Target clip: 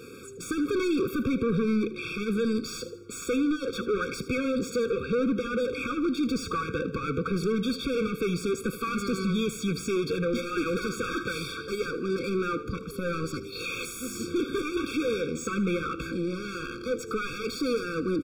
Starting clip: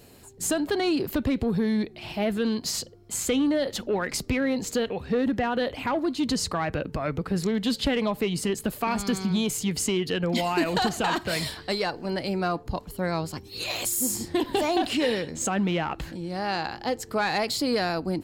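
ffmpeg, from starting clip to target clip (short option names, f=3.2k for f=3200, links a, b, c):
-filter_complex "[0:a]asplit=2[a][b];[b]highpass=f=720:p=1,volume=31dB,asoftclip=type=tanh:threshold=-10.5dB[c];[a][c]amix=inputs=2:normalize=0,lowpass=f=1.7k:p=1,volume=-6dB,aecho=1:1:78|156|234|312:0.178|0.0747|0.0314|0.0132,afftfilt=real='re*eq(mod(floor(b*sr/1024/540),2),0)':imag='im*eq(mod(floor(b*sr/1024/540),2),0)':win_size=1024:overlap=0.75,volume=-7.5dB"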